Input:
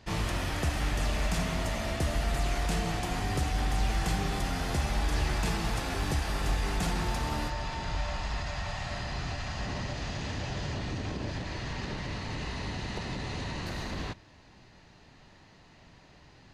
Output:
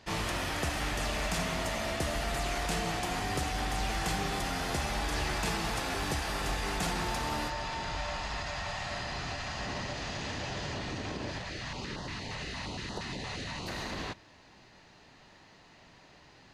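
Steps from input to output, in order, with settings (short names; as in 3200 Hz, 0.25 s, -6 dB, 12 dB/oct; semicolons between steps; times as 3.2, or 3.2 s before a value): low shelf 190 Hz -9.5 dB; 11.38–13.68 stepped notch 8.6 Hz 300–2300 Hz; gain +1.5 dB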